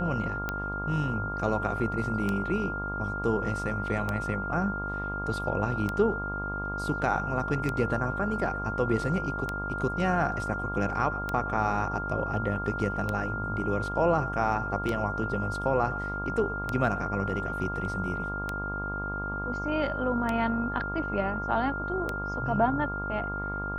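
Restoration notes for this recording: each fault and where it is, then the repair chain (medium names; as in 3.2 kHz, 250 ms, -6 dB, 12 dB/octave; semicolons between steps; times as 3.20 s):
buzz 50 Hz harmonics 28 -36 dBFS
tick 33 1/3 rpm -16 dBFS
whine 1.4 kHz -33 dBFS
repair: de-click; de-hum 50 Hz, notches 28; band-stop 1.4 kHz, Q 30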